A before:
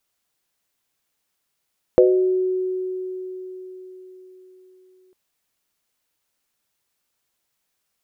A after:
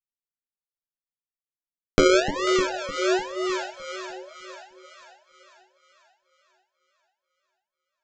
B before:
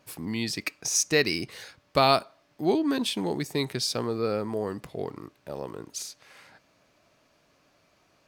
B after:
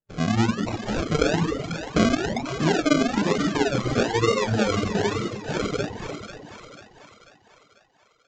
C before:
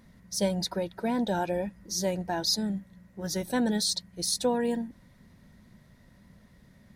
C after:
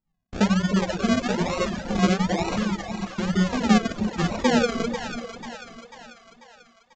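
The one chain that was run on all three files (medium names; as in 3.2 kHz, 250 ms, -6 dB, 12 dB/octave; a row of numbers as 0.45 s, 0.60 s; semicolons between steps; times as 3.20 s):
two-slope reverb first 0.85 s, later 2.4 s, from -26 dB, DRR -4.5 dB; gate -41 dBFS, range -41 dB; tilt EQ -3 dB/octave; compression 2.5:1, threshold -26 dBFS; flange 0.71 Hz, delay 6.2 ms, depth 4.6 ms, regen +23%; decimation with a swept rate 38×, swing 60% 1.1 Hz; on a send: two-band feedback delay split 630 Hz, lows 303 ms, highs 492 ms, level -7.5 dB; on the sum: reverb removal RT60 1.1 s; resampled via 16 kHz; normalise loudness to -24 LUFS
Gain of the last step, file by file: +7.0 dB, +8.5 dB, +8.0 dB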